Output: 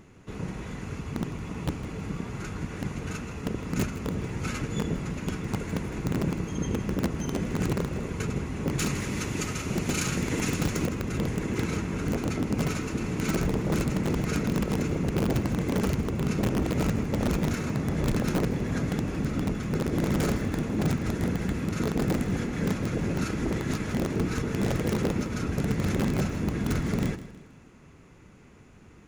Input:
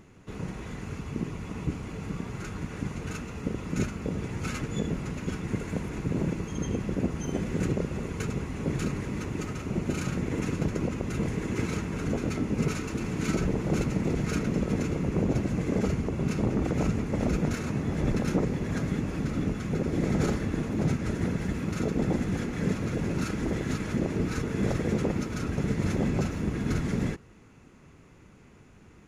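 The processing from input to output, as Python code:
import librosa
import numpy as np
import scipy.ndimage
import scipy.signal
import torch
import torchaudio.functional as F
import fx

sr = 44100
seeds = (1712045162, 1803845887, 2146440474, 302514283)

p1 = fx.high_shelf(x, sr, hz=2100.0, db=11.0, at=(8.78, 10.87))
p2 = (np.mod(10.0 ** (18.5 / 20.0) * p1 + 1.0, 2.0) - 1.0) / 10.0 ** (18.5 / 20.0)
p3 = p1 + (p2 * librosa.db_to_amplitude(-4.5))
p4 = fx.echo_feedback(p3, sr, ms=159, feedback_pct=42, wet_db=-15.0)
y = p4 * librosa.db_to_amplitude(-3.0)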